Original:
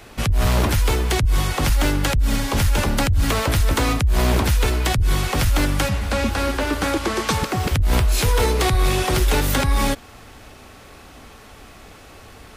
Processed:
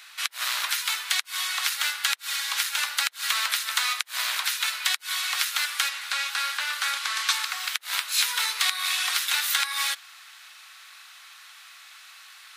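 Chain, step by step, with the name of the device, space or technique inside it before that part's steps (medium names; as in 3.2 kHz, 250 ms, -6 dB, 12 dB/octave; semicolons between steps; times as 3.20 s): headphones lying on a table (high-pass 1.3 kHz 24 dB/octave; peaking EQ 3.9 kHz +5.5 dB 0.34 oct)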